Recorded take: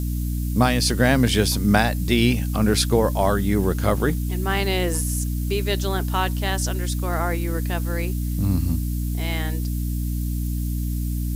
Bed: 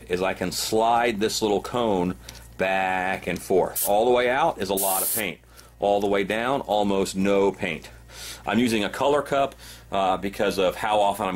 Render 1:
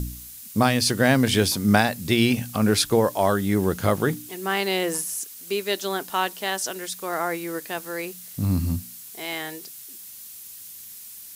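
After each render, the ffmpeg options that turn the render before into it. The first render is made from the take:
-af "bandreject=f=60:t=h:w=4,bandreject=f=120:t=h:w=4,bandreject=f=180:t=h:w=4,bandreject=f=240:t=h:w=4,bandreject=f=300:t=h:w=4"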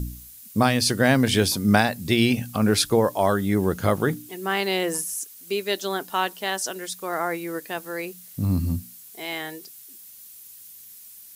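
-af "afftdn=nr=6:nf=-42"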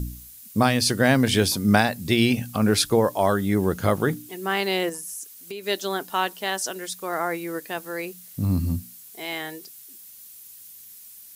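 -filter_complex "[0:a]asettb=1/sr,asplit=3[a][b][c];[a]atrim=end=4.894[d];[b]atrim=start=4.89:end=5.64,asetpts=PTS-STARTPTS,afade=t=in:d=0.004:c=qsin,afade=t=out:st=0.746:d=0.004:c=qsin,acompressor=threshold=-31dB:ratio=6:attack=3.2:release=140:knee=1:detection=peak[e];[c]atrim=start=5.636[f];[d][e]acrossfade=d=0.004:c1=hsin:c2=qsin[g];[g][f]acrossfade=d=0.004:c1=qsin:c2=hsin"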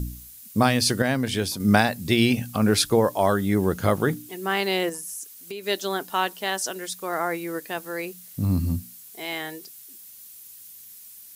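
-filter_complex "[0:a]asplit=3[a][b][c];[a]atrim=end=1.022[d];[b]atrim=start=1.018:end=1.602,asetpts=PTS-STARTPTS,volume=-5.5dB[e];[c]atrim=start=1.598[f];[d][e]acrossfade=d=0.004:c1=hsin:c2=hsin[g];[g][f]acrossfade=d=0.004:c1=hsin:c2=hsin"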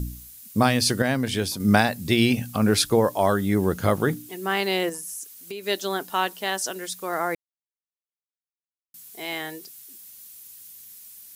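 -filter_complex "[0:a]asplit=3[a][b][c];[a]atrim=end=7.35,asetpts=PTS-STARTPTS,afade=t=out:st=7.346:d=0.004:c=hsin[d];[b]atrim=start=7.35:end=8.94,asetpts=PTS-STARTPTS,volume=0[e];[c]atrim=start=8.94,asetpts=PTS-STARTPTS,afade=t=in:d=0.004:c=hsin[f];[d][e][f]concat=n=3:v=0:a=1"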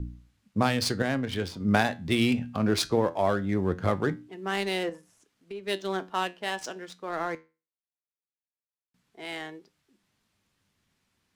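-filter_complex "[0:a]acrossover=split=270[a][b];[b]adynamicsmooth=sensitivity=3.5:basefreq=1.7k[c];[a][c]amix=inputs=2:normalize=0,flanger=delay=9.7:depth=2.7:regen=76:speed=0.2:shape=sinusoidal"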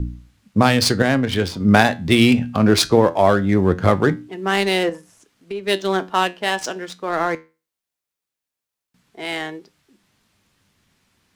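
-af "volume=10.5dB,alimiter=limit=-1dB:level=0:latency=1"

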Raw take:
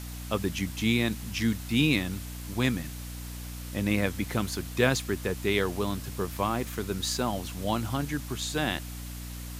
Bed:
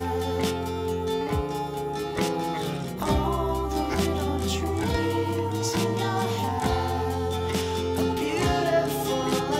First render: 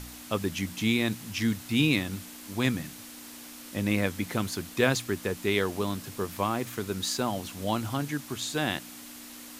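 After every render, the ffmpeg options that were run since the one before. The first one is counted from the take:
-af "bandreject=f=60:t=h:w=4,bandreject=f=120:t=h:w=4,bandreject=f=180:t=h:w=4"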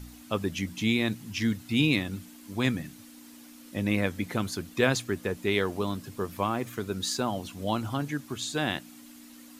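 -af "afftdn=nr=9:nf=-45"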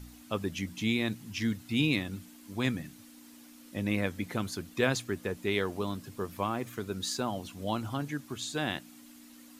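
-af "volume=-3.5dB"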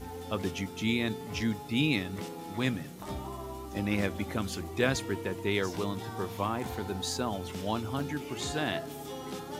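-filter_complex "[1:a]volume=-14.5dB[a];[0:a][a]amix=inputs=2:normalize=0"

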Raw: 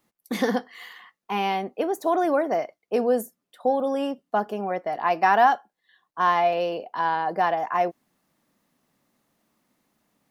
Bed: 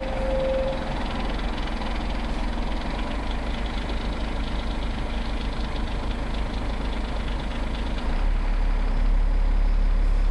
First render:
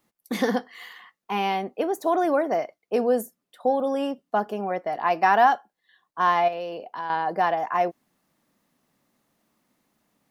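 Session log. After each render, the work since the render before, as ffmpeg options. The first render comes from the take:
-filter_complex "[0:a]asettb=1/sr,asplit=3[a][b][c];[a]atrim=end=6.484[d];[b]atrim=start=6.48:end=7.1,asetpts=PTS-STARTPTS,afade=t=in:d=0.004:c=qsin,afade=t=out:st=0.616:d=0.004:c=qsin,acompressor=threshold=-33dB:ratio=2:attack=3.2:release=140:knee=1:detection=peak[e];[c]atrim=start=7.096[f];[d][e]acrossfade=d=0.004:c1=hsin:c2=qsin[g];[g][f]acrossfade=d=0.004:c1=qsin:c2=hsin"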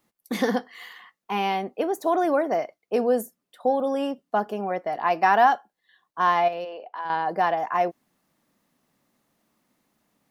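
-filter_complex "[0:a]asplit=3[a][b][c];[a]afade=t=out:st=6.64:d=0.02[d];[b]highpass=480,lowpass=3.2k,afade=t=in:st=6.64:d=0.02,afade=t=out:st=7.04:d=0.02[e];[c]afade=t=in:st=7.04:d=0.02[f];[d][e][f]amix=inputs=3:normalize=0"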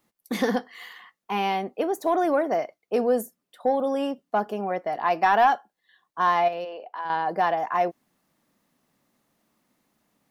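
-af "asoftclip=type=tanh:threshold=-8.5dB"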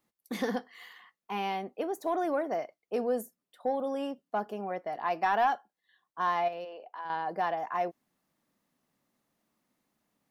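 -af "volume=-7.5dB"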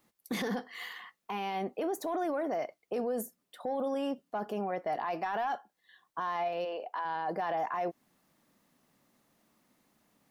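-filter_complex "[0:a]asplit=2[a][b];[b]acompressor=threshold=-37dB:ratio=6,volume=3dB[c];[a][c]amix=inputs=2:normalize=0,alimiter=level_in=2dB:limit=-24dB:level=0:latency=1:release=11,volume=-2dB"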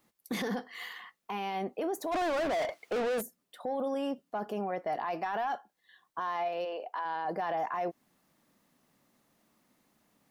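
-filter_complex "[0:a]asplit=3[a][b][c];[a]afade=t=out:st=2.11:d=0.02[d];[b]asplit=2[e][f];[f]highpass=f=720:p=1,volume=28dB,asoftclip=type=tanh:threshold=-25.5dB[g];[e][g]amix=inputs=2:normalize=0,lowpass=f=3.8k:p=1,volume=-6dB,afade=t=in:st=2.11:d=0.02,afade=t=out:st=3.2:d=0.02[h];[c]afade=t=in:st=3.2:d=0.02[i];[d][h][i]amix=inputs=3:normalize=0,asettb=1/sr,asplit=3[j][k][l];[j]atrim=end=6.194[m];[k]atrim=start=6.19:end=7.25,asetpts=PTS-STARTPTS,afade=t=in:d=0.004:c=qsin,afade=t=out:st=1.056:d=0.004:c=qsin,highpass=200[n];[l]atrim=start=7.246[o];[m][n]acrossfade=d=0.004:c1=hsin:c2=qsin[p];[p][o]acrossfade=d=0.004:c1=qsin:c2=hsin"

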